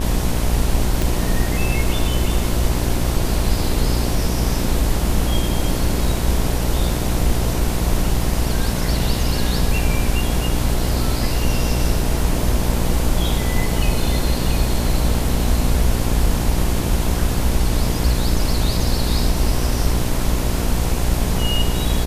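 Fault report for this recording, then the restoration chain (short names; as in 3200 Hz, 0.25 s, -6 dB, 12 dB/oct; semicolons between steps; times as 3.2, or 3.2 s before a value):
buzz 60 Hz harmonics 18 -22 dBFS
1.02 pop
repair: de-click; de-hum 60 Hz, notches 18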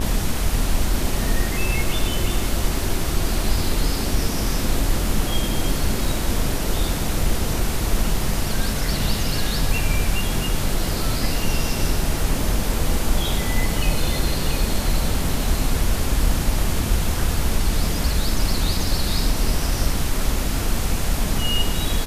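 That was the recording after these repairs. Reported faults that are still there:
none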